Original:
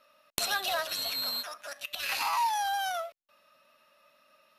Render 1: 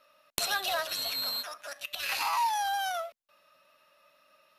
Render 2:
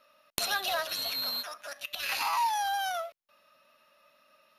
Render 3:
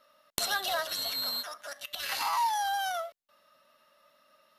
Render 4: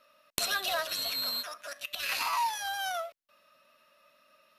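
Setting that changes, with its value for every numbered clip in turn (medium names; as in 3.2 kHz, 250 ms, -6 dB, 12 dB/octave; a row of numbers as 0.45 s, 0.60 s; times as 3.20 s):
band-stop, frequency: 230 Hz, 7.9 kHz, 2.5 kHz, 830 Hz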